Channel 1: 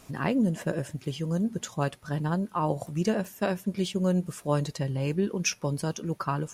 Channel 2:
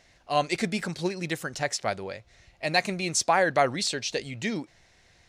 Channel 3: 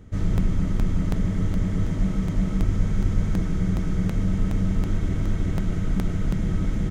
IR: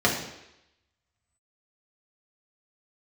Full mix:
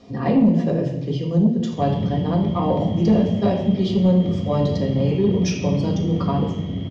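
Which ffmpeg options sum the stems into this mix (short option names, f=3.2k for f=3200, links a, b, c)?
-filter_complex "[0:a]volume=-3.5dB,asplit=2[a][b];[b]volume=-5.5dB[c];[2:a]highpass=110,adelay=1650,volume=-12.5dB,asplit=2[d][e];[e]volume=-4dB[f];[d]lowpass=f=2.9k:t=q:w=0.5098,lowpass=f=2.9k:t=q:w=0.6013,lowpass=f=2.9k:t=q:w=0.9,lowpass=f=2.9k:t=q:w=2.563,afreqshift=-3400,alimiter=level_in=15dB:limit=-24dB:level=0:latency=1,volume=-15dB,volume=0dB[g];[3:a]atrim=start_sample=2205[h];[c][f]amix=inputs=2:normalize=0[i];[i][h]afir=irnorm=-1:irlink=0[j];[a][g][j]amix=inputs=3:normalize=0,lowpass=f=4.9k:w=0.5412,lowpass=f=4.9k:w=1.3066,asoftclip=type=tanh:threshold=-8dB,equalizer=f=1.5k:t=o:w=0.57:g=-14.5"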